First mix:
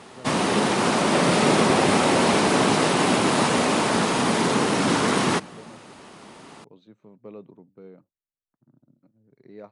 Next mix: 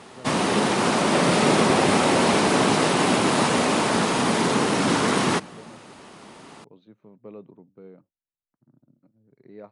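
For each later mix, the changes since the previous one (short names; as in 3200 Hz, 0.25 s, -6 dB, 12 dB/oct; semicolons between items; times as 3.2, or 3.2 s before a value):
second voice: add air absorption 130 m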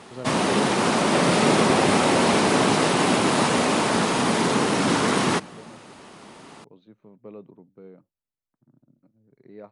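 first voice +9.5 dB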